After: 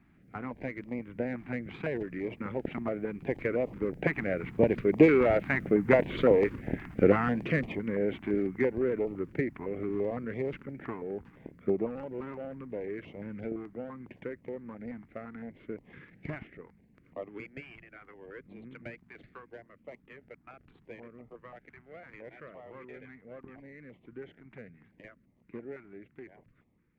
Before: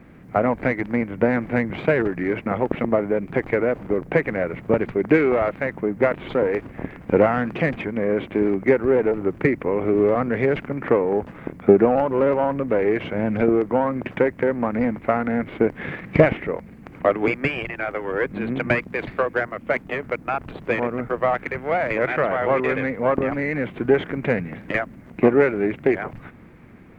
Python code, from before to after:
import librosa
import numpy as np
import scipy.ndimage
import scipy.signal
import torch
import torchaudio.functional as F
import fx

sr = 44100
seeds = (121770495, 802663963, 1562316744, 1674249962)

y = fx.doppler_pass(x, sr, speed_mps=8, closest_m=8.4, pass_at_s=5.88)
y = fx.filter_held_notch(y, sr, hz=5.9, low_hz=510.0, high_hz=1500.0)